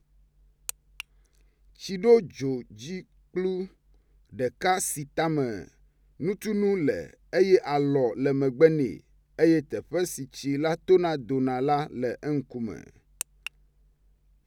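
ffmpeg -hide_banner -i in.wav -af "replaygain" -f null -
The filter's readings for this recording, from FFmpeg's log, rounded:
track_gain = +6.6 dB
track_peak = 0.324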